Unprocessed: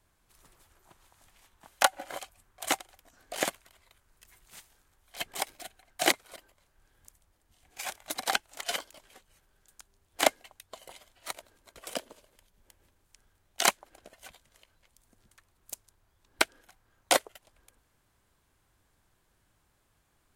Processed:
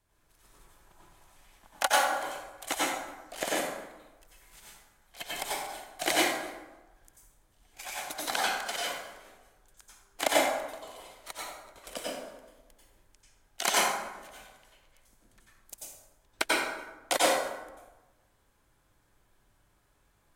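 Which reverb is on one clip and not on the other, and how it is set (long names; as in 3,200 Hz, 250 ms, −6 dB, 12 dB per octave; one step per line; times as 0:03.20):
dense smooth reverb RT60 1.1 s, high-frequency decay 0.55×, pre-delay 80 ms, DRR −7 dB
level −5.5 dB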